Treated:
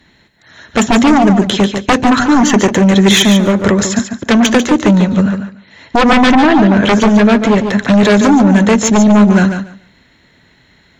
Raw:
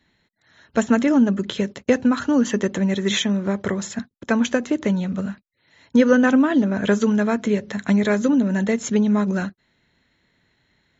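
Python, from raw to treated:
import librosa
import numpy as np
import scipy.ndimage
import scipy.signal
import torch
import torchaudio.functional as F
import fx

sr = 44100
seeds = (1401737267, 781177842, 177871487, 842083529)

y = fx.lowpass(x, sr, hz=5700.0, slope=12, at=(5.22, 7.94))
y = fx.fold_sine(y, sr, drive_db=12, ceiling_db=-4.0)
y = fx.echo_feedback(y, sr, ms=144, feedback_pct=17, wet_db=-8)
y = y * 10.0 ** (-1.0 / 20.0)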